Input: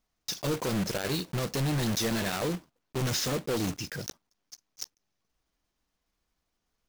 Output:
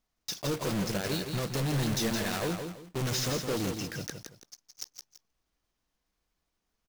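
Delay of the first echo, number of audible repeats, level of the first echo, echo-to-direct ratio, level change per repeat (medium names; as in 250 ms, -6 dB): 167 ms, 2, -6.5 dB, -6.0 dB, -10.0 dB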